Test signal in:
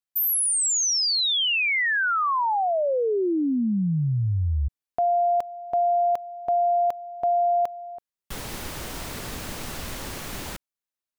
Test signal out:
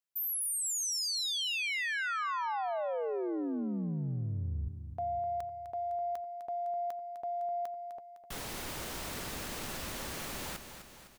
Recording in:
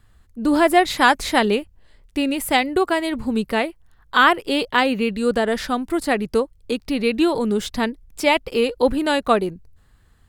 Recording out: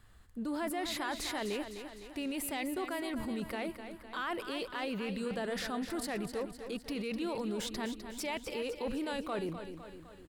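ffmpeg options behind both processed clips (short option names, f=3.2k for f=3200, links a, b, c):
-af "lowshelf=f=190:g=-5,areverse,acompressor=threshold=-32dB:ratio=5:attack=0.38:release=52:knee=6:detection=peak,areverse,aecho=1:1:254|508|762|1016|1270|1524:0.335|0.184|0.101|0.0557|0.0307|0.0169,volume=-2dB"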